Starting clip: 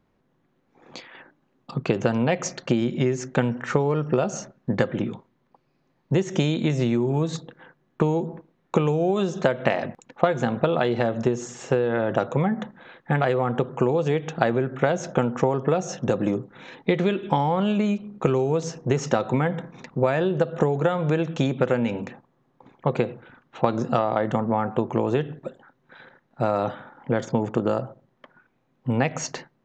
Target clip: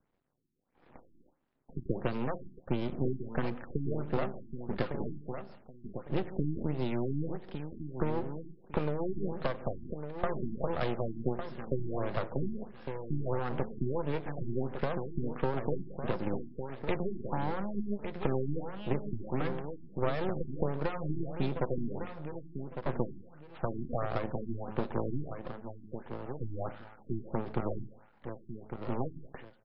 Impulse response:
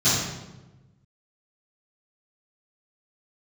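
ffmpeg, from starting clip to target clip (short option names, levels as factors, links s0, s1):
-filter_complex "[0:a]bandreject=f=106.6:t=h:w=4,bandreject=f=213.2:t=h:w=4,bandreject=f=319.8:t=h:w=4,bandreject=f=426.4:t=h:w=4,bandreject=f=533:t=h:w=4,acrossover=split=170|670|1800[s0][s1][s2][s3];[s2]alimiter=limit=0.106:level=0:latency=1:release=446[s4];[s0][s1][s4][s3]amix=inputs=4:normalize=0,aeval=exprs='max(val(0),0)':c=same,aecho=1:1:1155|2310|3465:0.398|0.0995|0.0249,afftfilt=real='re*lt(b*sr/1024,360*pow(5500/360,0.5+0.5*sin(2*PI*1.5*pts/sr)))':imag='im*lt(b*sr/1024,360*pow(5500/360,0.5+0.5*sin(2*PI*1.5*pts/sr)))':win_size=1024:overlap=0.75,volume=0.473"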